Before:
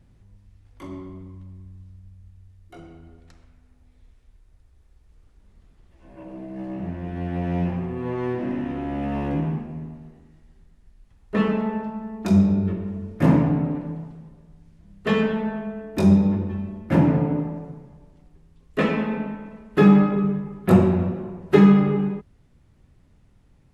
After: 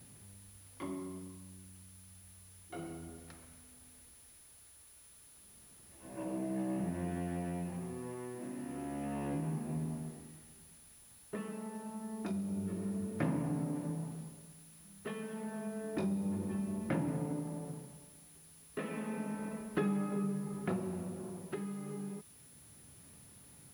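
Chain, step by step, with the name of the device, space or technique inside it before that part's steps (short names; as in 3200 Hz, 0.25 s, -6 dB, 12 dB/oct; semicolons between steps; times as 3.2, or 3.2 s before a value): medium wave at night (BPF 110–4100 Hz; compressor, threshold -34 dBFS, peak gain reduction 22 dB; tremolo 0.3 Hz, depth 60%; whine 10000 Hz -59 dBFS; white noise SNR 24 dB); de-hum 45.83 Hz, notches 2; gain +1 dB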